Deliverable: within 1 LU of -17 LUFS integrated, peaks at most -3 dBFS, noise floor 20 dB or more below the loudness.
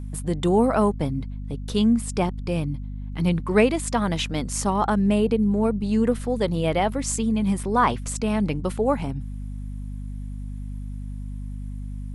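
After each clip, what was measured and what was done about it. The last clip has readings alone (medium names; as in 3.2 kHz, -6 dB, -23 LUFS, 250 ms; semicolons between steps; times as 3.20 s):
hum 50 Hz; highest harmonic 250 Hz; hum level -30 dBFS; loudness -23.5 LUFS; peak level -4.5 dBFS; loudness target -17.0 LUFS
-> de-hum 50 Hz, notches 5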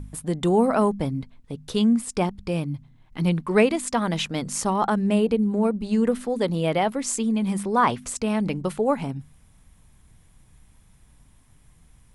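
hum not found; loudness -23.5 LUFS; peak level -5.5 dBFS; loudness target -17.0 LUFS
-> trim +6.5 dB; peak limiter -3 dBFS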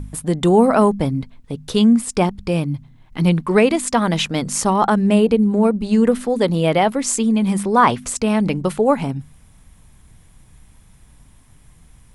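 loudness -17.5 LUFS; peak level -3.0 dBFS; noise floor -50 dBFS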